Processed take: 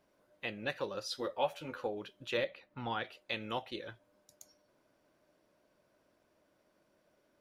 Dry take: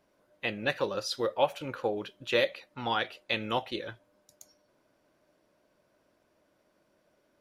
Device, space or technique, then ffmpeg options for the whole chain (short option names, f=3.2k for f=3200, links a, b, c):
parallel compression: -filter_complex "[0:a]asettb=1/sr,asplit=3[a][b][c];[a]atrim=end=1.094[d];[b]atrim=start=1.09:end=1.87,asetpts=PTS-STARTPTS,afade=t=in:d=0.004:c=qsin,afade=t=out:st=0.776:d=0.004:c=qsin,asplit=2[e][f];[f]adelay=12,volume=-3.5dB[g];[e][g]amix=inputs=2:normalize=0,atrim=end_sample=34398[h];[c]atrim=start=1.866[i];[d][h]acrossfade=d=0.004:c1=hsin:c2=qsin[j];[j][i]acrossfade=d=0.004:c1=qsin:c2=hsin,asettb=1/sr,asplit=3[k][l][m];[k]atrim=end=2.374[n];[l]atrim=start=2.37:end=3.04,asetpts=PTS-STARTPTS,afade=t=in:d=0.004:c=qsin,afade=t=out:st=0.666:d=0.004:c=qsin,bass=f=250:g=5,treble=f=4k:g=-10[o];[m]atrim=start=3.036[p];[n][o]acrossfade=d=0.004:c1=hsin:c2=qsin[q];[q][p]acrossfade=d=0.004:c1=qsin:c2=hsin,asplit=2[r][s];[s]acompressor=threshold=-45dB:ratio=6,volume=0dB[t];[r][t]amix=inputs=2:normalize=0,volume=-8.5dB"